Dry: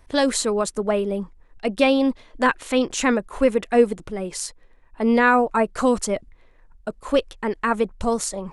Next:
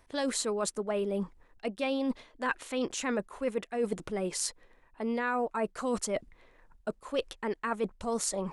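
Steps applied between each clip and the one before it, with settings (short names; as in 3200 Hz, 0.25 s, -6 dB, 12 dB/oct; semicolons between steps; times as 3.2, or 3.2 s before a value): low shelf 110 Hz -9.5 dB; reverse; compressor 6:1, threshold -29 dBFS, peak gain reduction 17 dB; reverse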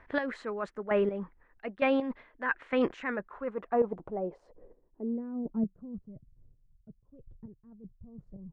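chopper 1.1 Hz, depth 65%, duty 20%; low-pass sweep 1800 Hz -> 120 Hz, 3.16–6.26; gain +4.5 dB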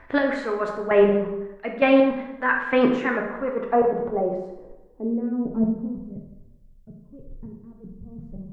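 plate-style reverb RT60 1 s, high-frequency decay 0.7×, DRR 1 dB; gain +7.5 dB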